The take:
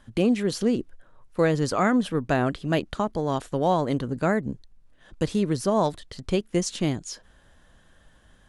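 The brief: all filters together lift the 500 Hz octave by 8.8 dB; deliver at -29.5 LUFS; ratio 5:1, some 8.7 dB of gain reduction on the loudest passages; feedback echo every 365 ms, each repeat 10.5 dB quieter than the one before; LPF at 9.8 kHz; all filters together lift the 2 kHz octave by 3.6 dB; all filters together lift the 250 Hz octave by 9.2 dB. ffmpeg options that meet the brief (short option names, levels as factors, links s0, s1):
-af "lowpass=9800,equalizer=f=250:t=o:g=9,equalizer=f=500:t=o:g=8,equalizer=f=2000:t=o:g=4,acompressor=threshold=0.141:ratio=5,aecho=1:1:365|730|1095:0.299|0.0896|0.0269,volume=0.473"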